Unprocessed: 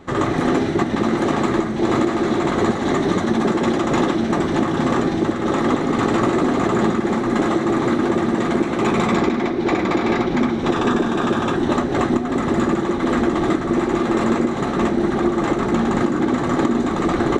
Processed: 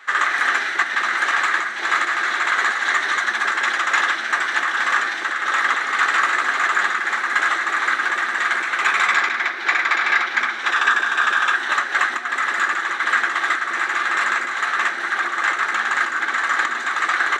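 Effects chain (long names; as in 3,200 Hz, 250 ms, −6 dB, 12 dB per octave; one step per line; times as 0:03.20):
high-pass with resonance 1,600 Hz, resonance Q 3.4
level +3.5 dB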